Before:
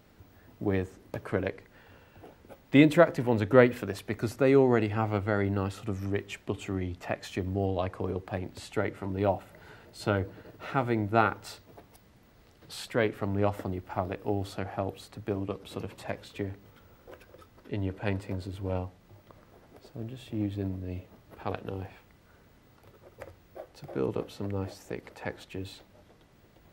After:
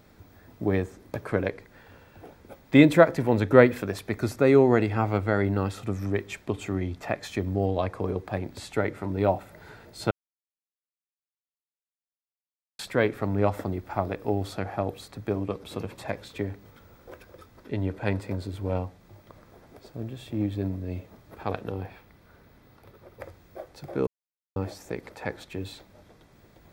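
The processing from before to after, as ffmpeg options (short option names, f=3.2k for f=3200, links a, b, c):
-filter_complex "[0:a]asettb=1/sr,asplit=3[a][b][c];[a]atrim=end=21.724[d];[b]atrim=start=21.72:end=23.24,asetpts=PTS-STARTPTS,afade=t=in:d=0.004:c=qsin,afade=t=out:st=1.516:d=0.004:c=qsin,equalizer=f=7.4k:w=1.5:g=-6.5[e];[c]atrim=start=23.236[f];[d][e]acrossfade=d=0.004:c1=hsin:c2=qsin[g];[g][f]acrossfade=d=0.004:c1=qsin:c2=hsin,asplit=5[h][i][j][k][l];[h]atrim=end=10.11,asetpts=PTS-STARTPTS,afade=t=out:st=10.106:d=0.004:c=hsin[m];[i]atrim=start=10.11:end=12.79,asetpts=PTS-STARTPTS,volume=0[n];[j]atrim=start=12.79:end=24.07,asetpts=PTS-STARTPTS,afade=t=in:d=0.004:c=hsin,afade=t=out:st=11.276:d=0.004:c=hsin[o];[k]atrim=start=24.07:end=24.56,asetpts=PTS-STARTPTS,volume=0[p];[l]atrim=start=24.56,asetpts=PTS-STARTPTS,afade=t=in:d=0.004:c=hsin[q];[m][n][o][p][q]concat=n=5:v=0:a=1,bandreject=f=2.9k:w=9,volume=3.5dB"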